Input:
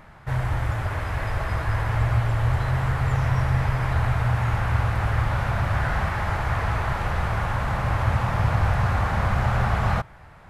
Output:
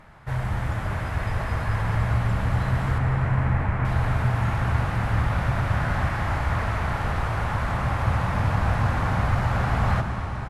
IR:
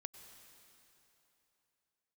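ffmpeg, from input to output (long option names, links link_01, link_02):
-filter_complex "[0:a]asettb=1/sr,asplit=3[link_01][link_02][link_03];[link_01]atrim=end=2.984[link_04];[link_02]atrim=start=2.98:end=3.85,asetpts=PTS-STARTPTS,afade=type=in:duration=0.004:curve=qsin,afade=type=out:start_time=0.866:duration=0.004:curve=qsin,lowpass=frequency=2500:width=0.5412,lowpass=frequency=2500:width=1.3066[link_05];[link_03]atrim=start=3.846[link_06];[link_04][link_05]acrossfade=duration=0.004:curve1=hsin:curve2=qsin[link_07];[link_07][link_06]acrossfade=duration=0.004:curve1=qsin:curve2=hsin,asplit=6[link_08][link_09][link_10][link_11][link_12][link_13];[link_09]adelay=136,afreqshift=69,volume=-14dB[link_14];[link_10]adelay=272,afreqshift=138,volume=-19.8dB[link_15];[link_11]adelay=408,afreqshift=207,volume=-25.7dB[link_16];[link_12]adelay=544,afreqshift=276,volume=-31.5dB[link_17];[link_13]adelay=680,afreqshift=345,volume=-37.4dB[link_18];[link_08][link_14][link_15][link_16][link_17][link_18]amix=inputs=6:normalize=0[link_19];[1:a]atrim=start_sample=2205,asetrate=23814,aresample=44100[link_20];[link_19][link_20]afir=irnorm=-1:irlink=0"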